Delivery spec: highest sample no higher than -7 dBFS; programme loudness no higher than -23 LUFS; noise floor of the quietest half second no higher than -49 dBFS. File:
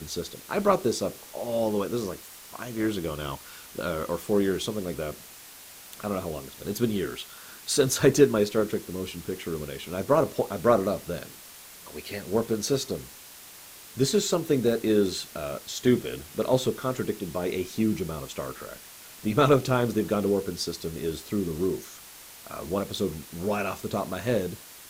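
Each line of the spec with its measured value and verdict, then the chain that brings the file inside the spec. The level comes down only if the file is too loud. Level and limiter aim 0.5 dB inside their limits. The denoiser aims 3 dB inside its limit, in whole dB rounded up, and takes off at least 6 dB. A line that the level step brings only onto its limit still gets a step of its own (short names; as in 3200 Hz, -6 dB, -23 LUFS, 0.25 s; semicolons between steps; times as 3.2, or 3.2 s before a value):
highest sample -6.0 dBFS: fail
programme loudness -27.5 LUFS: OK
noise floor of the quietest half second -47 dBFS: fail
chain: denoiser 6 dB, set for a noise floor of -47 dBFS; limiter -7.5 dBFS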